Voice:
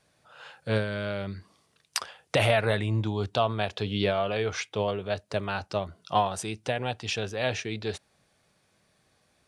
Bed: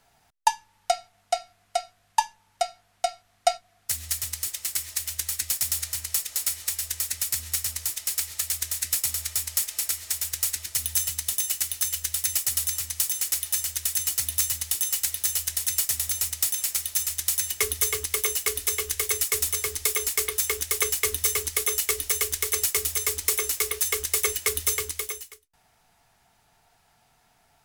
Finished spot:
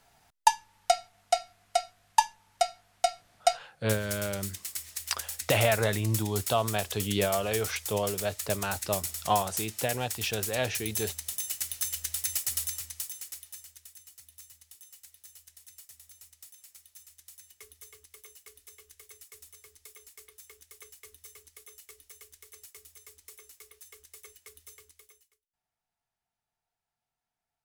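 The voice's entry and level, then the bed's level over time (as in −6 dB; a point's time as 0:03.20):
3.15 s, −1.5 dB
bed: 0:03.34 0 dB
0:03.93 −8.5 dB
0:11.27 −8.5 dB
0:11.76 −5.5 dB
0:12.61 −5.5 dB
0:14.03 −26.5 dB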